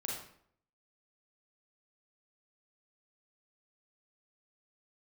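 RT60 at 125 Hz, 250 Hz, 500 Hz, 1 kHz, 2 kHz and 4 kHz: 0.75, 0.70, 0.65, 0.60, 0.55, 0.45 s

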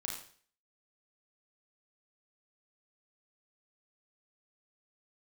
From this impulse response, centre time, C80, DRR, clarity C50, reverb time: 37 ms, 7.5 dB, -1.5 dB, 3.5 dB, 0.50 s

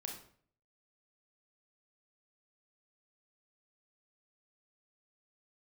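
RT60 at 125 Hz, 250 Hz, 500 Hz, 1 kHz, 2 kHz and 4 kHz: 0.70, 0.65, 0.55, 0.50, 0.45, 0.40 s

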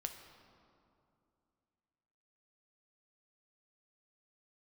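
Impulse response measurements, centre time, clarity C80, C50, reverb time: 34 ms, 8.5 dB, 7.5 dB, 2.6 s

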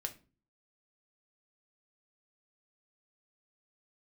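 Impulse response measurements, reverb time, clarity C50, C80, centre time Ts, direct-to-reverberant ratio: 0.35 s, 15.5 dB, 21.5 dB, 7 ms, 4.5 dB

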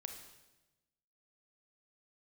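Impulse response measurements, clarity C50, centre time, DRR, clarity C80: 6.5 dB, 27 ms, 4.5 dB, 8.5 dB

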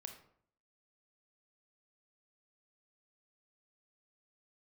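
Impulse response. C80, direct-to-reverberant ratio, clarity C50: 12.0 dB, 5.0 dB, 8.0 dB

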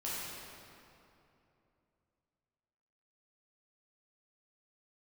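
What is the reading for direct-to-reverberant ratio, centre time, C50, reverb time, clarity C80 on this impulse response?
-9.0 dB, 0.168 s, -4.0 dB, 2.9 s, -1.5 dB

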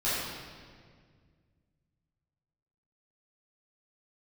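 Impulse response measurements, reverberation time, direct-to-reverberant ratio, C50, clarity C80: 1.9 s, -12.5 dB, -2.5 dB, 0.0 dB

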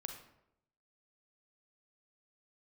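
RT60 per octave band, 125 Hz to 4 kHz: 0.90, 0.85, 0.85, 0.75, 0.65, 0.50 s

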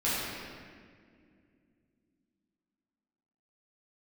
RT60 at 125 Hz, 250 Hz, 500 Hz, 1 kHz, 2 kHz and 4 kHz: 3.3, 3.8, 2.6, 1.7, 1.9, 1.3 s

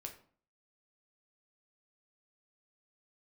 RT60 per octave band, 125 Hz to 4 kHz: 0.55, 0.60, 0.50, 0.45, 0.40, 0.35 s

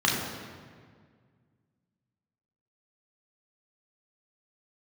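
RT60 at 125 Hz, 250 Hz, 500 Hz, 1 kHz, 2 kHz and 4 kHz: 2.7, 2.3, 1.9, 1.7, 1.6, 1.3 s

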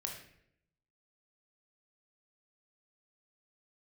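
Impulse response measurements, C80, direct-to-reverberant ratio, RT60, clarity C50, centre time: 8.0 dB, 1.0 dB, 0.70 s, 5.0 dB, 32 ms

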